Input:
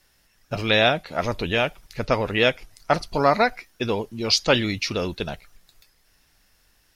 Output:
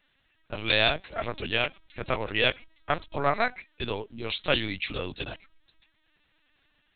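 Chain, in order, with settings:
linear-prediction vocoder at 8 kHz pitch kept
high-shelf EQ 2,100 Hz +9.5 dB
level −8 dB

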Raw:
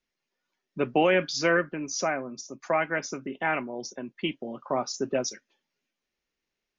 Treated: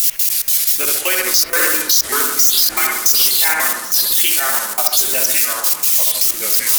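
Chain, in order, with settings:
spike at every zero crossing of −26.5 dBFS
first difference
harmonic generator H 3 −16 dB, 6 −32 dB, 8 −33 dB, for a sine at −17.5 dBFS
multi-voice chorus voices 6, 0.62 Hz, delay 15 ms, depth 1.8 ms
gate pattern "x.x..x.xx" 157 BPM −24 dB
on a send: bucket-brigade delay 67 ms, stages 1,024, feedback 57%, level −3.5 dB
on the sum: delay with pitch and tempo change per echo 301 ms, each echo −3 semitones, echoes 3, each echo −6 dB
boost into a limiter +33 dB
level −1 dB

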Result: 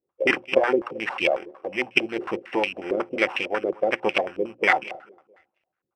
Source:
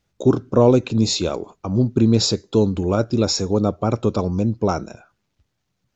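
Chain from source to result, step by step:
samples sorted by size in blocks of 16 samples
low-shelf EQ 150 Hz −7 dB
mains-hum notches 60/120/180/240/300/360 Hz
harmonic and percussive parts rebalanced harmonic −18 dB
spectral tilt +4 dB per octave
hollow resonant body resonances 350/530/760 Hz, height 9 dB, ringing for 95 ms
on a send: repeating echo 220 ms, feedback 37%, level −21 dB
on the sum: low-pass on a step sequencer 11 Hz 400–2,500 Hz
level −1 dB

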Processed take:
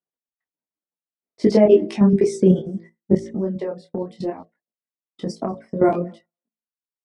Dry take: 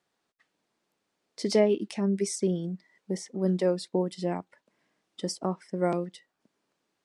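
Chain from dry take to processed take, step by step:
0:03.13–0:05.80: downward compressor 20 to 1, threshold −32 dBFS, peak gain reduction 13.5 dB
low-pass filter 1,100 Hz 6 dB per octave
feedback echo with a high-pass in the loop 194 ms, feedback 44%, high-pass 810 Hz, level −19 dB
reverb reduction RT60 1 s
output level in coarse steps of 14 dB
tuned comb filter 220 Hz, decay 0.18 s, harmonics odd, mix 50%
hum removal 55.84 Hz, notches 13
downward expander −57 dBFS
boost into a limiter +28.5 dB
micro pitch shift up and down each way 22 cents

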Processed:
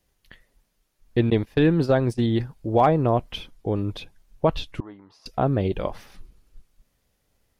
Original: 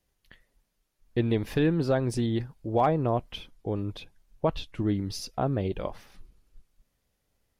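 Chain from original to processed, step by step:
0:01.30–0:02.27: noise gate −27 dBFS, range −20 dB
0:04.80–0:05.26: resonant band-pass 990 Hz, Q 3.7
level +5.5 dB

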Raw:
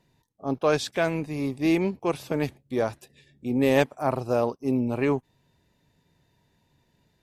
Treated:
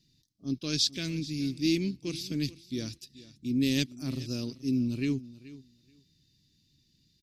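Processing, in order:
drawn EQ curve 310 Hz 0 dB, 460 Hz −17 dB, 830 Hz −30 dB, 4,900 Hz +14 dB, 8,300 Hz 0 dB
repeating echo 431 ms, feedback 15%, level −18 dB
level −2.5 dB

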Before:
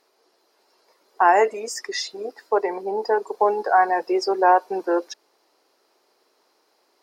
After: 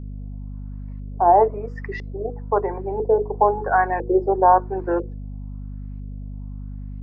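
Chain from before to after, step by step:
auto-filter low-pass saw up 1 Hz 420–2,600 Hz
spectral tilt −3 dB per octave
notch filter 3,600 Hz, Q 11
mains hum 50 Hz, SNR 10 dB
mains-hum notches 60/120/180/240/300/360/420/480 Hz
level −4.5 dB

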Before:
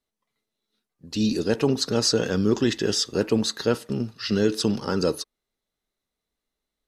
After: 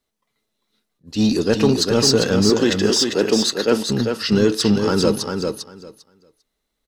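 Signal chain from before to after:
0:02.50–0:03.88: high-pass filter 220 Hz 12 dB per octave
in parallel at −5.5 dB: gain into a clipping stage and back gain 22 dB
on the sum: repeating echo 398 ms, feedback 16%, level −5.5 dB
level that may rise only so fast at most 350 dB per second
level +3 dB

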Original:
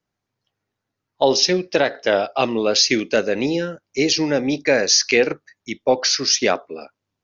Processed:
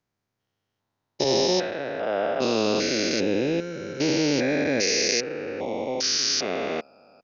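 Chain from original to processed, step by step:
spectrum averaged block by block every 400 ms
0:01.24–0:02.42: multiband upward and downward expander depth 100%

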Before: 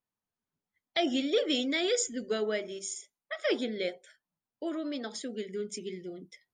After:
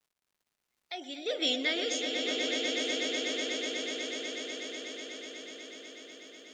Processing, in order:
source passing by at 0:01.55, 18 m/s, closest 2.3 metres
meter weighting curve A
surface crackle 170 per second −67 dBFS
on a send: echo that builds up and dies away 123 ms, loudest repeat 8, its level −7.5 dB
on the sum: level +3.5 dB

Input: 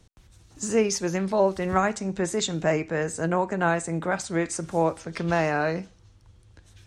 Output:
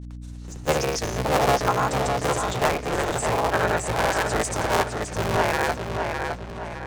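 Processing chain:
sub-harmonics by changed cycles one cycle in 3, inverted
parametric band 240 Hz −7.5 dB 0.44 octaves
in parallel at +1 dB: downward compressor, threshold −32 dBFS, peak gain reduction 14.5 dB
on the sum: granular cloud
mains hum 60 Hz, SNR 11 dB
on a send: tape delay 610 ms, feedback 46%, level −4 dB, low-pass 5,200 Hz

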